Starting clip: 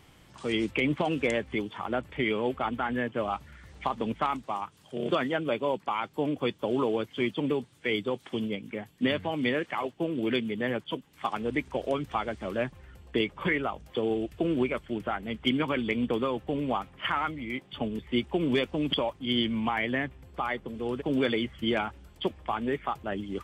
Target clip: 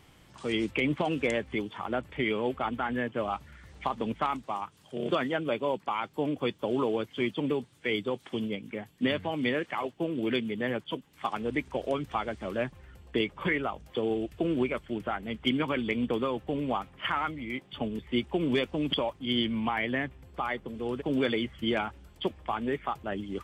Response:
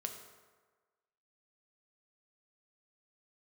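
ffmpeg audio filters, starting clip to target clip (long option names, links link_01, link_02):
-filter_complex "[0:a]asettb=1/sr,asplit=3[link_01][link_02][link_03];[link_01]atrim=end=19.454[link_04];[link_02]atrim=start=19.45:end=19.96,asetpts=PTS-STARTPTS,afade=type=in:duration=0.004:curve=qsin,afade=type=out:start_time=0.506:duration=0.004:curve=qsin,equalizer=frequency=6700:width_type=o:width=0.25:gain=-9[link_05];[link_03]atrim=start=19.956[link_06];[link_04][link_05]acrossfade=duration=0.004:curve1=hsin:curve2=qsin[link_07];[link_07][link_06]acrossfade=duration=0.004:curve1=qsin:curve2=hsin,volume=-1dB"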